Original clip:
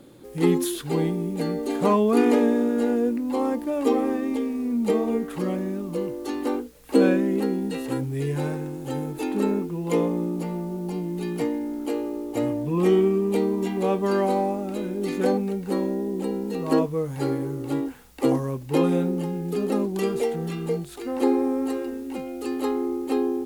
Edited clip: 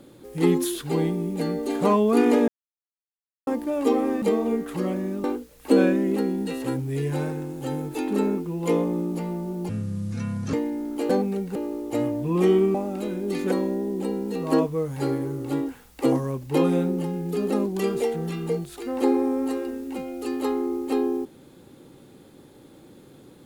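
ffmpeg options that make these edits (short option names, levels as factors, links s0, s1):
-filter_complex "[0:a]asplit=11[s0][s1][s2][s3][s4][s5][s6][s7][s8][s9][s10];[s0]atrim=end=2.48,asetpts=PTS-STARTPTS,afade=t=out:st=2.476:d=0.004:c=hsin[s11];[s1]atrim=start=2.48:end=3.47,asetpts=PTS-STARTPTS,volume=0[s12];[s2]atrim=start=3.47:end=4.222,asetpts=PTS-STARTPTS,afade=t=in:d=0.004:c=hsin[s13];[s3]atrim=start=4.838:end=5.862[s14];[s4]atrim=start=6.478:end=10.934[s15];[s5]atrim=start=10.93:end=11.42,asetpts=PTS-STARTPTS,asetrate=25578,aresample=44100[s16];[s6]atrim=start=11.416:end=11.982[s17];[s7]atrim=start=15.248:end=15.712[s18];[s8]atrim=start=11.978:end=13.172[s19];[s9]atrim=start=14.478:end=15.252[s20];[s10]atrim=start=15.708[s21];[s11][s12][s13]concat=n=3:v=0:a=1[s22];[s22][s14]acrossfade=d=0.004:c1=hsin:c2=hsin[s23];[s23][s15]acrossfade=d=0.004:c1=hsin:c2=hsin[s24];[s24][s16]acrossfade=d=0.004:c1=hsin:c2=hsin[s25];[s25][s17]acrossfade=d=0.004:c1=hsin:c2=hsin[s26];[s26][s18]acrossfade=d=0.004:c1=hsin:c2=hsin[s27];[s27][s19]acrossfade=d=0.004:c1=hsin:c2=hsin[s28];[s28][s20]acrossfade=d=0.004:c1=hsin:c2=hsin[s29];[s29][s21]acrossfade=d=0.004:c1=hsin:c2=hsin"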